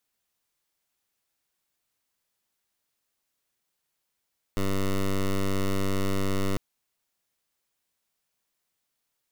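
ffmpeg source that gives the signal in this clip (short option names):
-f lavfi -i "aevalsrc='0.0562*(2*lt(mod(97.3*t,1),0.12)-1)':d=2:s=44100"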